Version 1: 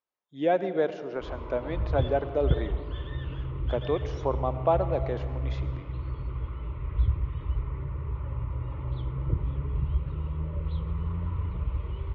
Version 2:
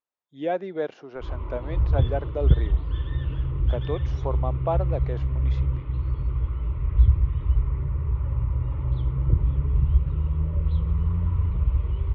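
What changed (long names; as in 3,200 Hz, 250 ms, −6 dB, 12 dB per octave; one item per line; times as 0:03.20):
speech: send off
background: add low-shelf EQ 150 Hz +9.5 dB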